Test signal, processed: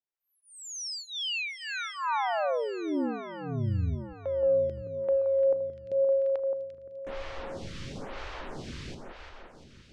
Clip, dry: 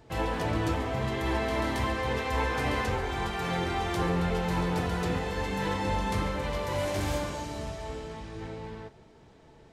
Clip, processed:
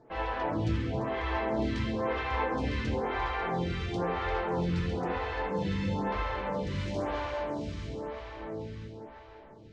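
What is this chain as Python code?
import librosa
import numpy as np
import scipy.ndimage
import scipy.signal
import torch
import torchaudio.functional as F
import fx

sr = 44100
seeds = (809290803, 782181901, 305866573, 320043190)

p1 = scipy.signal.sosfilt(scipy.signal.bessel(4, 4000.0, 'lowpass', norm='mag', fs=sr, output='sos'), x)
p2 = p1 + fx.echo_alternate(p1, sr, ms=173, hz=1400.0, feedback_pct=80, wet_db=-5, dry=0)
y = fx.stagger_phaser(p2, sr, hz=1.0)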